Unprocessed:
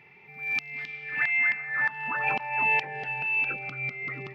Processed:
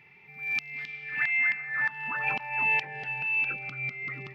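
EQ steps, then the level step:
parametric band 520 Hz −6 dB 2.4 octaves
0.0 dB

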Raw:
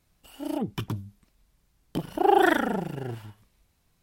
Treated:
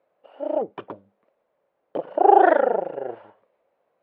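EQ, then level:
high-pass with resonance 540 Hz, resonance Q 4.9
low-pass filter 1,600 Hz 6 dB per octave
high-frequency loss of the air 480 metres
+4.5 dB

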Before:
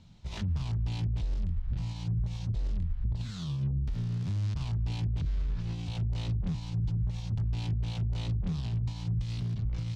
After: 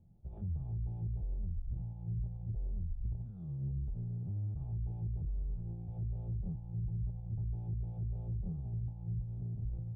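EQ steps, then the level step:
formant resonators in series u
phaser with its sweep stopped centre 1,400 Hz, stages 8
+9.0 dB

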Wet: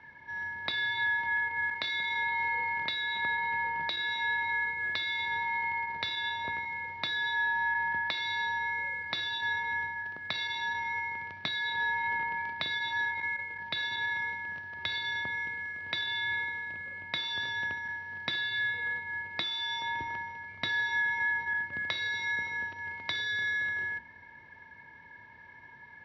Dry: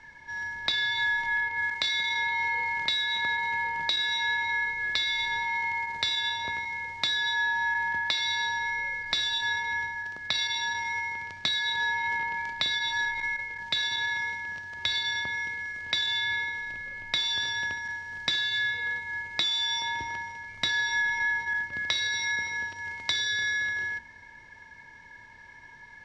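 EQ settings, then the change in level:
high-pass filter 80 Hz
high-frequency loss of the air 290 metres
0.0 dB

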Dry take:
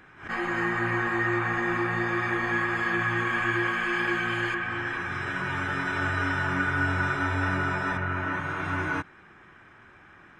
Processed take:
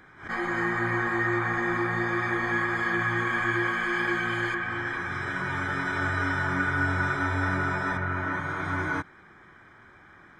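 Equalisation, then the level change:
Butterworth band-reject 2,700 Hz, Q 4.7
0.0 dB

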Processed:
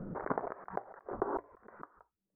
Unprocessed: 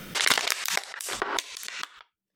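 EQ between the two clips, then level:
Gaussian smoothing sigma 9.7 samples
mains-hum notches 60/120 Hz
+2.0 dB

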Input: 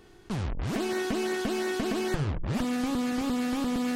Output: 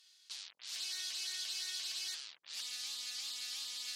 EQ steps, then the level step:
resonant band-pass 4,300 Hz, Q 2.1
first difference
+9.5 dB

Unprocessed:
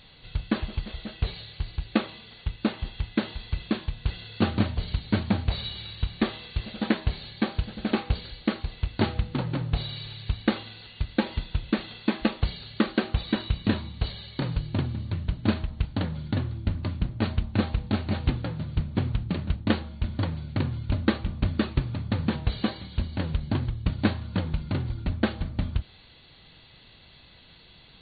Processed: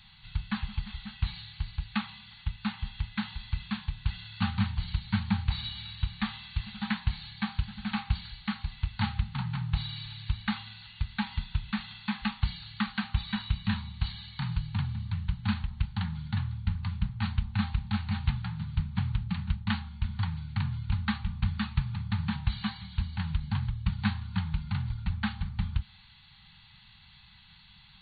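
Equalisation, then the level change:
Chebyshev band-stop filter 210–810 Hz, order 4
−2.0 dB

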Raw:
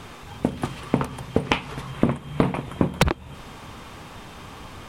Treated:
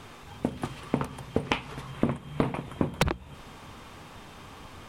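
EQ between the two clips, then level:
mains-hum notches 60/120/180 Hz
−5.5 dB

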